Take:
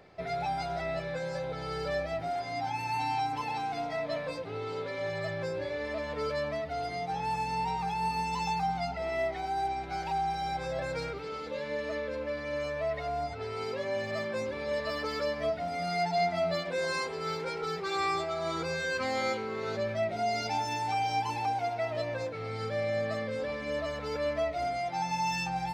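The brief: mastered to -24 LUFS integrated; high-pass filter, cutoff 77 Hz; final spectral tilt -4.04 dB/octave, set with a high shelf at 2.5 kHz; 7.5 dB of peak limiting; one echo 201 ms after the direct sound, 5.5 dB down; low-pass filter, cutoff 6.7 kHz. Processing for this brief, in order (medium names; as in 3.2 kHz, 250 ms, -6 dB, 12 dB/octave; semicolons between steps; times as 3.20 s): high-pass 77 Hz; low-pass 6.7 kHz; treble shelf 2.5 kHz -5 dB; peak limiter -27.5 dBFS; delay 201 ms -5.5 dB; trim +10.5 dB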